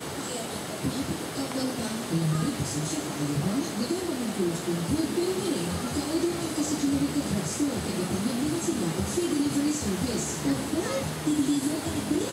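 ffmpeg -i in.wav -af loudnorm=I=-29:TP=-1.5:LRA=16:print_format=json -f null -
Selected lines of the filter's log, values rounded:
"input_i" : "-28.2",
"input_tp" : "-13.8",
"input_lra" : "1.4",
"input_thresh" : "-38.2",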